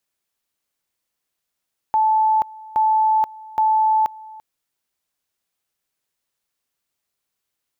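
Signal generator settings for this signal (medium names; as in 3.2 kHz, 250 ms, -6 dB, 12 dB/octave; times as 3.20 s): two-level tone 872 Hz -13.5 dBFS, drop 22 dB, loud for 0.48 s, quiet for 0.34 s, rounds 3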